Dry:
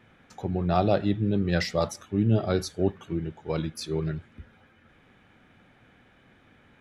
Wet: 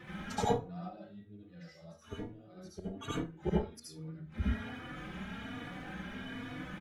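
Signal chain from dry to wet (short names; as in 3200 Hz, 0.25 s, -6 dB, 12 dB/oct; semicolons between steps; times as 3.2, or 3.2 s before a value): bin magnitudes rounded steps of 15 dB; 3.84–4.32 low shelf 260 Hz +9 dB; flipped gate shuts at -28 dBFS, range -35 dB; 0.8–2.57 resonator 80 Hz, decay 0.24 s, harmonics all, mix 80%; reverb RT60 0.30 s, pre-delay 62 ms, DRR -6 dB; endless flanger 3.5 ms +1.2 Hz; gain +10.5 dB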